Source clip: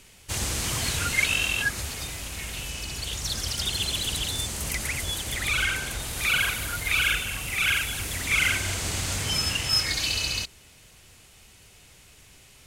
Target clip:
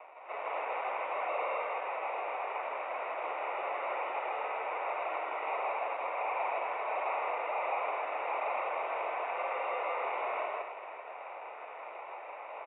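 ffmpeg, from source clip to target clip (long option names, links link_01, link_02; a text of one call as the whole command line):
ffmpeg -i in.wav -filter_complex "[0:a]equalizer=frequency=910:width=4.2:gain=13.5,areverse,acompressor=mode=upward:threshold=-38dB:ratio=2.5,areverse,acrusher=samples=28:mix=1:aa=0.000001,asoftclip=type=tanh:threshold=-36dB,asplit=2[link_01][link_02];[link_02]aecho=0:1:160.3|259.5:1|0.501[link_03];[link_01][link_03]amix=inputs=2:normalize=0,highpass=frequency=510:width_type=q:width=0.5412,highpass=frequency=510:width_type=q:width=1.307,lowpass=frequency=2500:width_type=q:width=0.5176,lowpass=frequency=2500:width_type=q:width=0.7071,lowpass=frequency=2500:width_type=q:width=1.932,afreqshift=65,volume=4dB" -ar 16000 -c:a aac -b:a 16k out.aac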